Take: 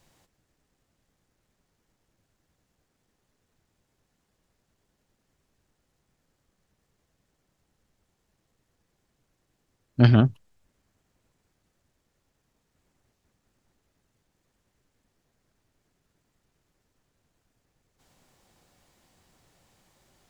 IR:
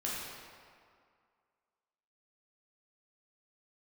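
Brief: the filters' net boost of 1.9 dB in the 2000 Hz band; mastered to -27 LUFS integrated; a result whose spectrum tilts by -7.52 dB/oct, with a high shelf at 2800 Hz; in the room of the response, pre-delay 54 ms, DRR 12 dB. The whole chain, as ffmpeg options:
-filter_complex "[0:a]equalizer=f=2k:t=o:g=4,highshelf=f=2.8k:g=-3.5,asplit=2[a][b];[1:a]atrim=start_sample=2205,adelay=54[c];[b][c]afir=irnorm=-1:irlink=0,volume=-16.5dB[d];[a][d]amix=inputs=2:normalize=0,volume=-7dB"

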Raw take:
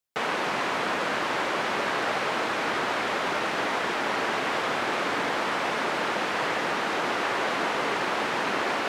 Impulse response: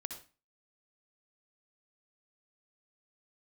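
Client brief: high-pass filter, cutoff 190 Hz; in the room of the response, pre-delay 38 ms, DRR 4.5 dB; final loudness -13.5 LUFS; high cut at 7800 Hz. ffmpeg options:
-filter_complex "[0:a]highpass=190,lowpass=7.8k,asplit=2[a][b];[1:a]atrim=start_sample=2205,adelay=38[c];[b][c]afir=irnorm=-1:irlink=0,volume=-2.5dB[d];[a][d]amix=inputs=2:normalize=0,volume=12dB"

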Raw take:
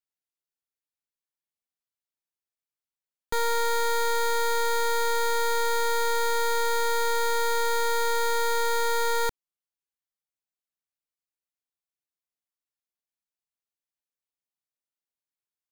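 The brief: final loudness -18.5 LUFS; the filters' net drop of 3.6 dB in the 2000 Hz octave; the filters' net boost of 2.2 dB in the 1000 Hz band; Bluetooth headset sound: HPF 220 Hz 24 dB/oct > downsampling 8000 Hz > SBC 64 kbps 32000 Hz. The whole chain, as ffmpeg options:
-af "highpass=f=220:w=0.5412,highpass=f=220:w=1.3066,equalizer=f=1k:t=o:g=4,equalizer=f=2k:t=o:g=-6,aresample=8000,aresample=44100,volume=8dB" -ar 32000 -c:a sbc -b:a 64k

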